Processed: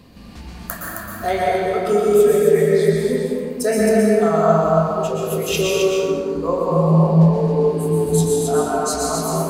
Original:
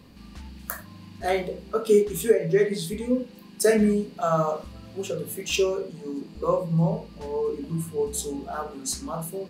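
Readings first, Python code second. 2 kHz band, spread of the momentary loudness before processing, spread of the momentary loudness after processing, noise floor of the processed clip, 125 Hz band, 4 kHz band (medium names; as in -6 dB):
+7.0 dB, 15 LU, 9 LU, -36 dBFS, +11.5 dB, +6.0 dB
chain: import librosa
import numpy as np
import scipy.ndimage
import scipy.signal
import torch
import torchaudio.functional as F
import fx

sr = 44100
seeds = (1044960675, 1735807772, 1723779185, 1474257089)

p1 = x + fx.echo_single(x, sr, ms=266, db=-4.5, dry=0)
p2 = fx.rider(p1, sr, range_db=4, speed_s=2.0)
p3 = fx.peak_eq(p2, sr, hz=690.0, db=5.5, octaves=0.21)
y = fx.rev_plate(p3, sr, seeds[0], rt60_s=2.3, hf_ratio=0.35, predelay_ms=105, drr_db=-4.0)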